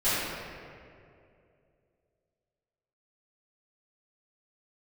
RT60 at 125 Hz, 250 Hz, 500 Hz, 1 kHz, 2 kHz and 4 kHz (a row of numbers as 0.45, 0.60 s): 2.9, 2.7, 2.9, 2.1, 2.0, 1.4 s